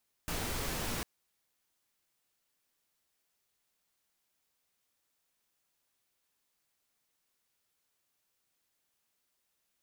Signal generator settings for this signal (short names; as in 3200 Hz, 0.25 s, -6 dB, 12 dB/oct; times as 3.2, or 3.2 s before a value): noise pink, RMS -36 dBFS 0.75 s